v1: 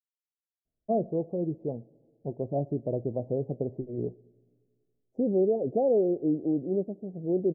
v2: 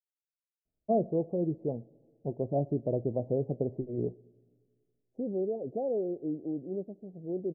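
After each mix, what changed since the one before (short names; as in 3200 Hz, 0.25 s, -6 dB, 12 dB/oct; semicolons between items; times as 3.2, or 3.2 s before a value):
second voice -7.5 dB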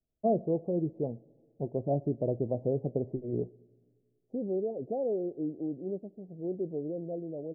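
first voice: entry -0.65 s; second voice: entry -0.85 s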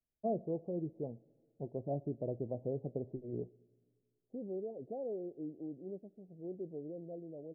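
first voice -8.0 dB; second voice -9.0 dB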